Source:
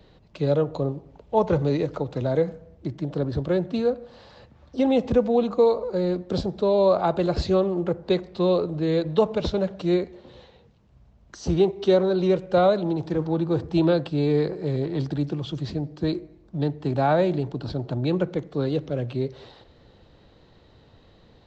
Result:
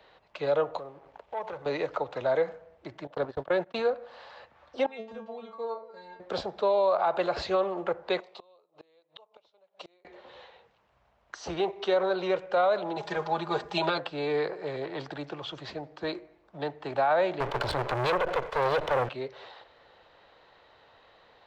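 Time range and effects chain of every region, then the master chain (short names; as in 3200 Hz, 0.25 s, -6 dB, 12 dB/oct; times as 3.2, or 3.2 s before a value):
0.78–1.66 sample leveller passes 1 + compressor 3:1, threshold -37 dBFS
3.07–3.88 gate -26 dBFS, range -42 dB + fast leveller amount 50%
4.86–6.2 low shelf 460 Hz +5 dB + metallic resonator 220 Hz, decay 0.36 s, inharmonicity 0.002
8.2–10.05 HPF 700 Hz 6 dB/oct + bell 1600 Hz -11 dB 0.76 oct + flipped gate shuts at -28 dBFS, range -32 dB
12.96–13.98 high shelf 4300 Hz +11 dB + comb 4.9 ms, depth 93%
17.4–19.09 minimum comb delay 2 ms + low shelf 130 Hz +9.5 dB + sample leveller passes 3
whole clip: three-band isolator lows -24 dB, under 580 Hz, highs -12 dB, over 3000 Hz; limiter -22.5 dBFS; gain +5.5 dB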